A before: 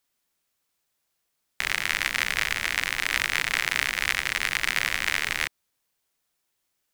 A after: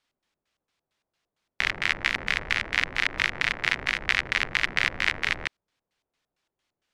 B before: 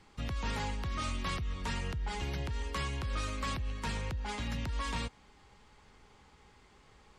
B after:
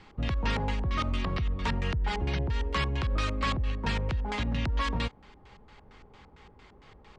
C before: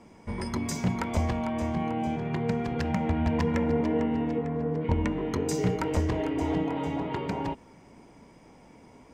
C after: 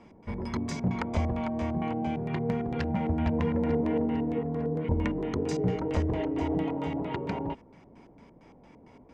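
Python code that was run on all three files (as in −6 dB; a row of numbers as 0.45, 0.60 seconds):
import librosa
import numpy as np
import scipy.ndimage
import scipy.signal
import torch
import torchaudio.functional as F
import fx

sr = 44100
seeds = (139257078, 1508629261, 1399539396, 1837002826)

p1 = np.clip(10.0 ** (19.0 / 20.0) * x, -1.0, 1.0) / 10.0 ** (19.0 / 20.0)
p2 = x + (p1 * librosa.db_to_amplitude(-8.5))
p3 = fx.filter_lfo_lowpass(p2, sr, shape='square', hz=4.4, low_hz=650.0, high_hz=3500.0, q=0.84)
p4 = fx.high_shelf(p3, sr, hz=5300.0, db=7.0)
y = p4 * 10.0 ** (-30 / 20.0) / np.sqrt(np.mean(np.square(p4)))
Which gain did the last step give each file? 0.0, +4.0, −4.0 decibels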